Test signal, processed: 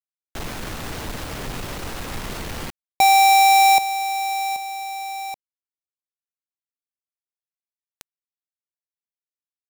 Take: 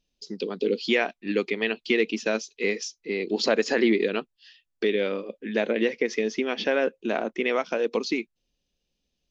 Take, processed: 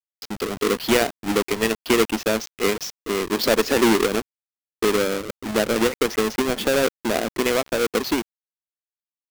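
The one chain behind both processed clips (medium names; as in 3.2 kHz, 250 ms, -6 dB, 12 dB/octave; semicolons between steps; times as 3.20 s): square wave that keeps the level; bit crusher 6-bit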